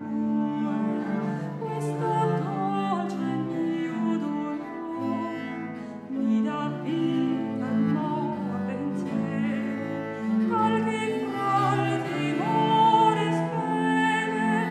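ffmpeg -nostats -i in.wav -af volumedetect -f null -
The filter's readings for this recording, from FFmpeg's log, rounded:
mean_volume: -26.0 dB
max_volume: -9.1 dB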